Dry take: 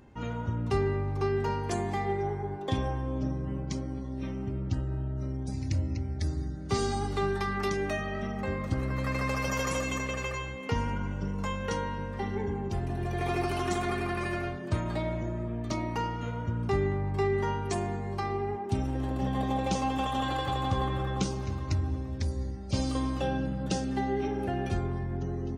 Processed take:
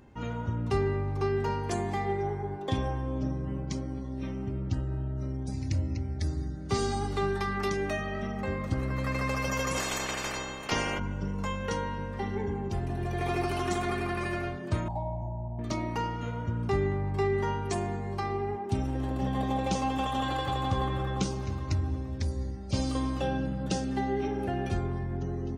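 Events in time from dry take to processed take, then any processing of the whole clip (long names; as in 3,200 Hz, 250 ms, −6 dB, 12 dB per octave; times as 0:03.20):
0:09.76–0:10.98: ceiling on every frequency bin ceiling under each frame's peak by 23 dB
0:14.88–0:15.59: drawn EQ curve 120 Hz 0 dB, 450 Hz −19 dB, 860 Hz +12 dB, 1,300 Hz −30 dB, 8,300 Hz −19 dB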